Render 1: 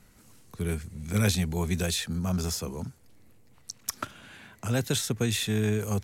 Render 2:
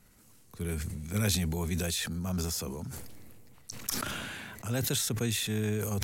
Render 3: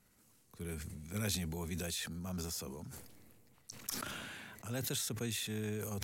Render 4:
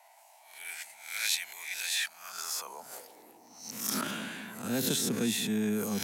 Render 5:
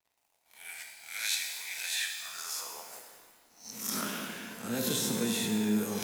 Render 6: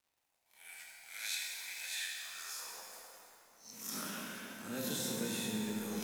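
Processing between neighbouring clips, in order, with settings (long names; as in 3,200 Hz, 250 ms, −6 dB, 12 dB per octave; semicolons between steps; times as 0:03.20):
high-shelf EQ 11,000 Hz +8 dB; level that may fall only so fast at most 23 dB per second; level −5 dB
low-shelf EQ 80 Hz −7 dB; level −7 dB
peak hold with a rise ahead of every peak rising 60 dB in 0.53 s; high-pass filter sweep 2,100 Hz → 210 Hz, 0:02.08–0:03.67; noise in a band 630–960 Hz −65 dBFS; level +4.5 dB
dead-zone distortion −54 dBFS; reverb with rising layers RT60 1.4 s, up +12 semitones, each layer −8 dB, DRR 2 dB; level −2.5 dB
surface crackle 98 per second −57 dBFS; tuned comb filter 510 Hz, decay 0.49 s, mix 60%; dense smooth reverb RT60 3.3 s, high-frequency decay 0.65×, DRR 1.5 dB; level −1 dB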